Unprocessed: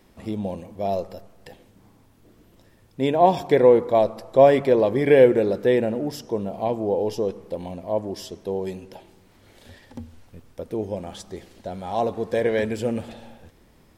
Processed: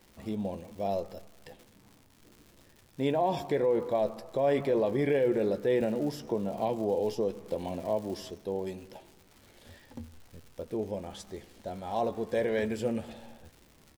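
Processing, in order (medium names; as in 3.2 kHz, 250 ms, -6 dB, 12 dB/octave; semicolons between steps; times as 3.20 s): peak limiter -13.5 dBFS, peak gain reduction 10.5 dB; crackle 200 per s -39 dBFS; doubling 14 ms -11 dB; 5.81–8.31 s: three bands compressed up and down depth 70%; trim -6 dB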